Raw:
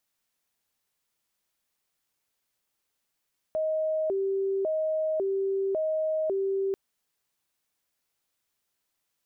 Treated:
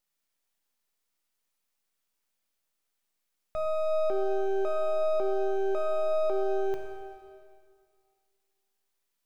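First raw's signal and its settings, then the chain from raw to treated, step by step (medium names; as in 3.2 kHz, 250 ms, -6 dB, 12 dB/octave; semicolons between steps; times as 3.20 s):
siren hi-lo 389–628 Hz 0.91 per s sine -24.5 dBFS 3.19 s
high-pass 150 Hz 24 dB/octave; half-wave rectifier; plate-style reverb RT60 2.2 s, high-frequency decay 1×, DRR 3 dB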